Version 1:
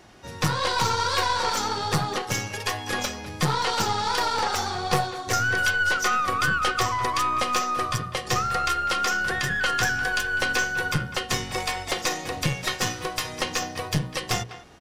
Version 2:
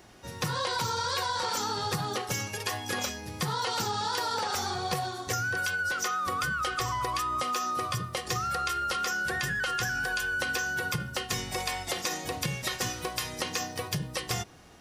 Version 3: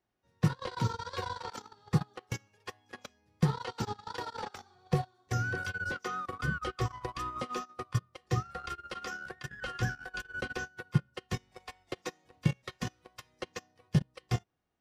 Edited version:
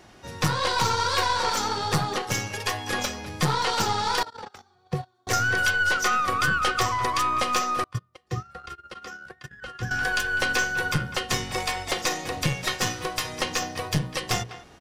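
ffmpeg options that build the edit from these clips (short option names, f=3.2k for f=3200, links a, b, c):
-filter_complex "[2:a]asplit=2[a][b];[0:a]asplit=3[c][d][e];[c]atrim=end=4.232[f];[a]atrim=start=4.228:end=5.272[g];[d]atrim=start=5.268:end=7.842[h];[b]atrim=start=7.838:end=9.912[i];[e]atrim=start=9.908[j];[f][g]acrossfade=d=0.004:c1=hsin:c2=hsin[k];[k][h]acrossfade=d=0.004:c1=hsin:c2=hsin[l];[l][i]acrossfade=d=0.004:c1=hsin:c2=hsin[m];[m][j]acrossfade=d=0.004:c1=hsin:c2=hsin"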